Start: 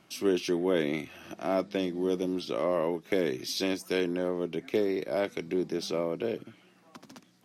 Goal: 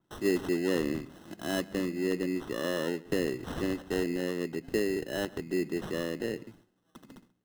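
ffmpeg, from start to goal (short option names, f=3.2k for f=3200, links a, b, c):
-filter_complex "[0:a]agate=range=-12dB:threshold=-56dB:ratio=16:detection=peak,acrusher=samples=19:mix=1:aa=0.000001,firequalizer=gain_entry='entry(340,0);entry(640,-7);entry(1800,-3)':delay=0.05:min_phase=1,asplit=2[a][b];[b]adelay=134.1,volume=-21dB,highshelf=f=4k:g=-3.02[c];[a][c]amix=inputs=2:normalize=0,adynamicequalizer=threshold=0.00251:dfrequency=4100:dqfactor=0.7:tfrequency=4100:tqfactor=0.7:attack=5:release=100:ratio=0.375:range=3:mode=cutabove:tftype=highshelf"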